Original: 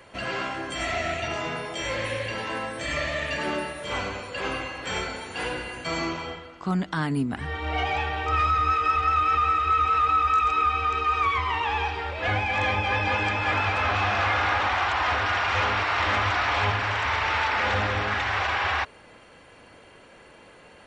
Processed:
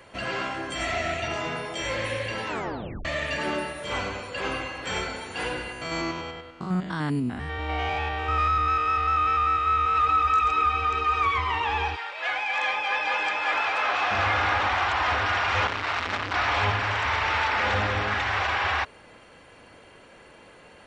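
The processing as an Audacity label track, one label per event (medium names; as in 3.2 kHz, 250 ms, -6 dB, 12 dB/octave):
2.480000	2.480000	tape stop 0.57 s
5.720000	9.960000	spectrogram pixelated in time every 100 ms
11.950000	14.100000	high-pass 990 Hz -> 410 Hz
15.670000	16.340000	transformer saturation saturates under 1.6 kHz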